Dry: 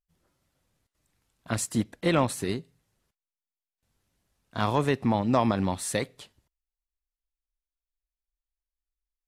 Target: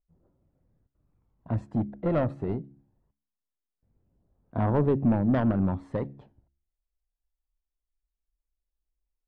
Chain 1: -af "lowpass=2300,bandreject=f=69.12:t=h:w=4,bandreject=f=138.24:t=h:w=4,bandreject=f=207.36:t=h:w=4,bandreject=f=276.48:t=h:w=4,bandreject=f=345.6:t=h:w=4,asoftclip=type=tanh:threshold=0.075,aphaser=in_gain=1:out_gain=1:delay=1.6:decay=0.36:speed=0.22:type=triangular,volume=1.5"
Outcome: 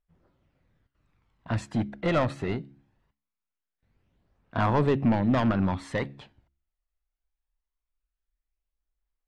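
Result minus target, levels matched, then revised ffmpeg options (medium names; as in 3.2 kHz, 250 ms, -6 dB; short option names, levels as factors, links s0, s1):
2 kHz band +8.5 dB
-af "lowpass=680,bandreject=f=69.12:t=h:w=4,bandreject=f=138.24:t=h:w=4,bandreject=f=207.36:t=h:w=4,bandreject=f=276.48:t=h:w=4,bandreject=f=345.6:t=h:w=4,asoftclip=type=tanh:threshold=0.075,aphaser=in_gain=1:out_gain=1:delay=1.6:decay=0.36:speed=0.22:type=triangular,volume=1.5"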